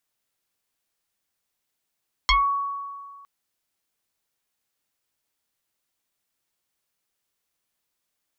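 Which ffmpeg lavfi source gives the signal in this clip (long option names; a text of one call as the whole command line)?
ffmpeg -f lavfi -i "aevalsrc='0.2*pow(10,-3*t/1.87)*sin(2*PI*1120*t+4.3*pow(10,-3*t/0.22)*sin(2*PI*0.96*1120*t))':duration=0.96:sample_rate=44100" out.wav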